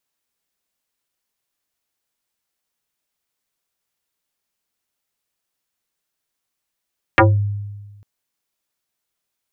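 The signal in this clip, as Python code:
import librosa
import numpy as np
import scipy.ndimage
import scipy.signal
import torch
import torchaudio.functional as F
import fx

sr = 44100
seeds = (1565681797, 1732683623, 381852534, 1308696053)

y = fx.fm2(sr, length_s=0.85, level_db=-6, carrier_hz=102.0, ratio=4.28, index=6.1, index_s=0.23, decay_s=1.35, shape='exponential')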